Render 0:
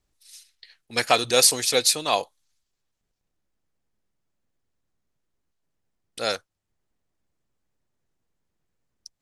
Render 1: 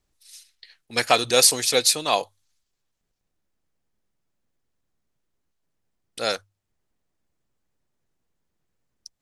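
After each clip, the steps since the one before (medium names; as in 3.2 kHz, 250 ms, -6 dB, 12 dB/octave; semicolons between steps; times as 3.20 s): hum notches 50/100 Hz; trim +1 dB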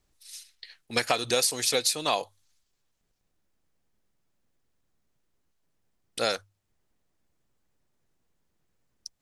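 compression 6:1, threshold -24 dBFS, peak gain reduction 13 dB; trim +2 dB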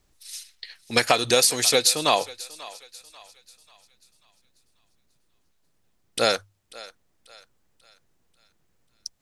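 thinning echo 540 ms, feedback 43%, high-pass 600 Hz, level -18 dB; trim +6 dB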